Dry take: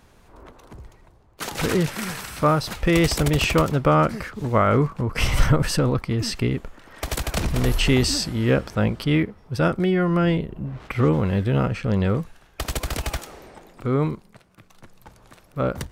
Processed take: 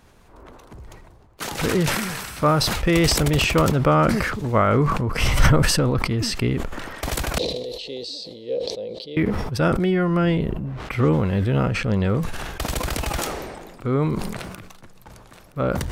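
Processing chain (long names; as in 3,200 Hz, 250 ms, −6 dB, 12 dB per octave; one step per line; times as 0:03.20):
0:07.38–0:09.17: pair of resonant band-passes 1,400 Hz, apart 3 octaves
level that may fall only so fast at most 34 dB per second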